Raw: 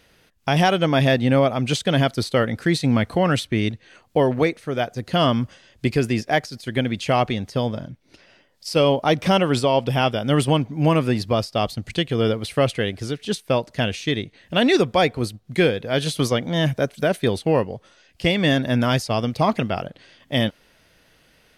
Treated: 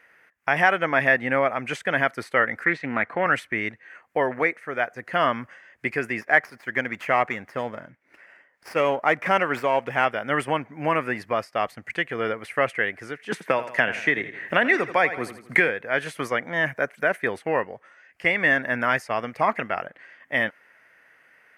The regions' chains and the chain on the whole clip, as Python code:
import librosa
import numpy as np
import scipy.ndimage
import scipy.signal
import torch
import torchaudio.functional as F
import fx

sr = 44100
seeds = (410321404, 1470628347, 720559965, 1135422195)

y = fx.chain(x, sr, fx.bandpass_edges(low_hz=110.0, high_hz=3900.0),
    fx.doppler_dist(depth_ms=0.18), at=(2.64, 3.26))
y = fx.chain(y, sr, fx.high_shelf(hz=8700.0, db=-2.5),
    fx.running_max(window=3), at=(6.21, 10.05))
y = fx.chain(y, sr, fx.echo_feedback(ms=83, feedback_pct=38, wet_db=-14),
    fx.band_squash(depth_pct=100), at=(13.32, 15.69))
y = fx.highpass(y, sr, hz=1100.0, slope=6)
y = fx.high_shelf_res(y, sr, hz=2700.0, db=-12.0, q=3.0)
y = F.gain(torch.from_numpy(y), 2.0).numpy()